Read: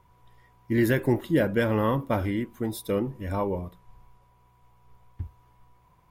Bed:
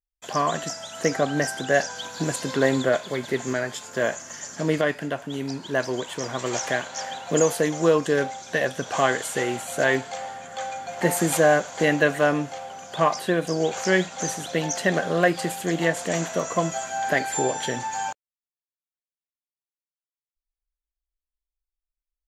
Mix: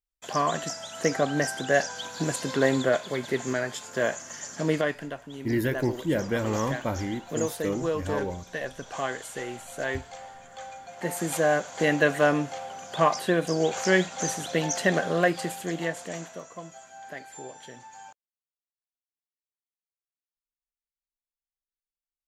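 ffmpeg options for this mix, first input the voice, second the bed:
-filter_complex "[0:a]adelay=4750,volume=-3.5dB[a];[1:a]volume=6.5dB,afade=t=out:st=4.7:d=0.5:silence=0.421697,afade=t=in:st=11.02:d=1.21:silence=0.375837,afade=t=out:st=14.87:d=1.63:silence=0.149624[b];[a][b]amix=inputs=2:normalize=0"

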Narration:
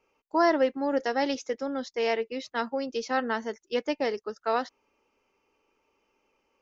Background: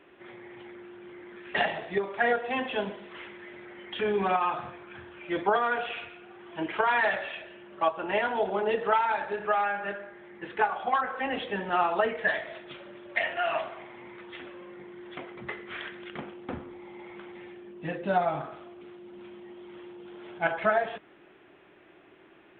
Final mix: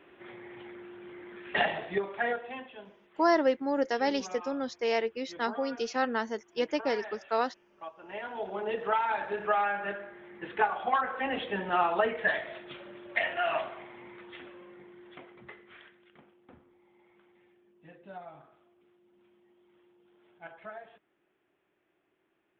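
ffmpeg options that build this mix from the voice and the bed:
-filter_complex "[0:a]adelay=2850,volume=-1.5dB[a];[1:a]volume=16dB,afade=t=out:st=1.82:d=0.9:silence=0.141254,afade=t=in:st=7.98:d=1.4:silence=0.149624,afade=t=out:st=13.58:d=2.43:silence=0.11885[b];[a][b]amix=inputs=2:normalize=0"

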